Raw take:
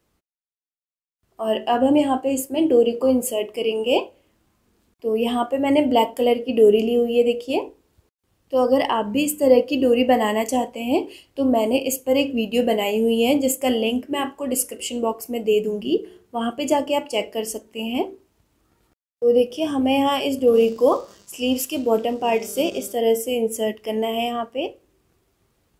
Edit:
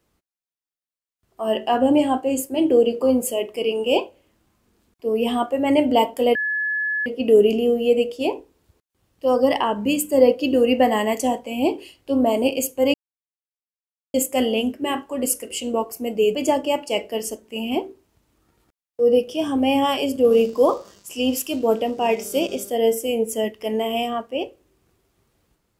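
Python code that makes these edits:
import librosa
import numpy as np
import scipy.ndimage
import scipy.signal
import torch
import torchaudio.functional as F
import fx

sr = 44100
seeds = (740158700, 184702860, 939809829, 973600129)

y = fx.edit(x, sr, fx.insert_tone(at_s=6.35, length_s=0.71, hz=1710.0, db=-20.5),
    fx.silence(start_s=12.23, length_s=1.2),
    fx.cut(start_s=15.64, length_s=0.94), tone=tone)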